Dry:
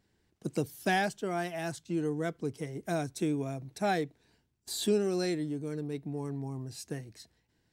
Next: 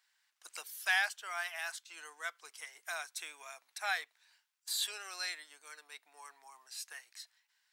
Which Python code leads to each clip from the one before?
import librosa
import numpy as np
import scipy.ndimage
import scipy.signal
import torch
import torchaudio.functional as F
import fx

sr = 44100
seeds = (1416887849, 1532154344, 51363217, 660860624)

y = scipy.signal.sosfilt(scipy.signal.butter(4, 1100.0, 'highpass', fs=sr, output='sos'), x)
y = fx.dynamic_eq(y, sr, hz=6800.0, q=1.0, threshold_db=-52.0, ratio=4.0, max_db=-4)
y = y * librosa.db_to_amplitude(3.5)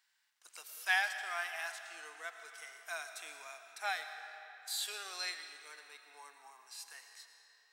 y = fx.rev_freeverb(x, sr, rt60_s=3.5, hf_ratio=0.7, predelay_ms=70, drr_db=9.0)
y = fx.hpss(y, sr, part='percussive', gain_db=-9)
y = y * librosa.db_to_amplitude(2.0)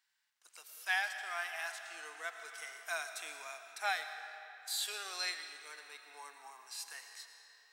y = fx.rider(x, sr, range_db=4, speed_s=2.0)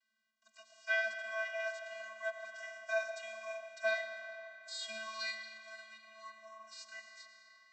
y = fx.vocoder(x, sr, bands=32, carrier='square', carrier_hz=220.0)
y = y + 10.0 ** (-23.0 / 20.0) * np.pad(y, (int(1001 * sr / 1000.0), 0))[:len(y)]
y = y * librosa.db_to_amplitude(2.0)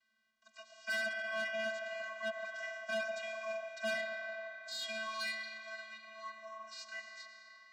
y = fx.air_absorb(x, sr, metres=71.0)
y = 10.0 ** (-38.0 / 20.0) * np.tanh(y / 10.0 ** (-38.0 / 20.0))
y = y * librosa.db_to_amplitude(5.5)